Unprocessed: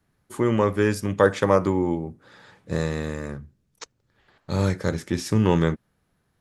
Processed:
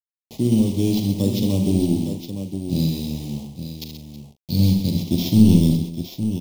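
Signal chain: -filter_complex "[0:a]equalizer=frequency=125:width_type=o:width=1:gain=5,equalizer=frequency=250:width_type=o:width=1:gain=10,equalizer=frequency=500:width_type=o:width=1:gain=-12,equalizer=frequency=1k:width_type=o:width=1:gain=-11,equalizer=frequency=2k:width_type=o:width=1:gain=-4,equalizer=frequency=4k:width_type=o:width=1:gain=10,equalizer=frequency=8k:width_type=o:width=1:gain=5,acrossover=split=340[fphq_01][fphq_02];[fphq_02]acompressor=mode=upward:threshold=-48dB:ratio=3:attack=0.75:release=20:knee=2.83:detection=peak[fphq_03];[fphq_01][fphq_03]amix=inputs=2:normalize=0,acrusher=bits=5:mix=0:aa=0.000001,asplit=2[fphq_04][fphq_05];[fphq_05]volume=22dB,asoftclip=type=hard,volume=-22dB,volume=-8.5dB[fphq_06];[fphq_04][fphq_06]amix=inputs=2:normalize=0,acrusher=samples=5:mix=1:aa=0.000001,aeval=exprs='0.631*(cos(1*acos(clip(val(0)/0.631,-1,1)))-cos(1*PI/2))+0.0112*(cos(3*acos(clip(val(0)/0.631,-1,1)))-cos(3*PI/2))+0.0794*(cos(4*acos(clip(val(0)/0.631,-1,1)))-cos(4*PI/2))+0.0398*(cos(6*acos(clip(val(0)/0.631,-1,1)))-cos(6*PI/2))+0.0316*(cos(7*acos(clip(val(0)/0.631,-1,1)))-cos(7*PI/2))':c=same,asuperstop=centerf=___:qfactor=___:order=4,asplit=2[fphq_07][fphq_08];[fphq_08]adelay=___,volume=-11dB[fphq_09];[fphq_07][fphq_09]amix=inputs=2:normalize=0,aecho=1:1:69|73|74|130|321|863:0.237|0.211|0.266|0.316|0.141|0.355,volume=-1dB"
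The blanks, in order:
1500, 0.65, 41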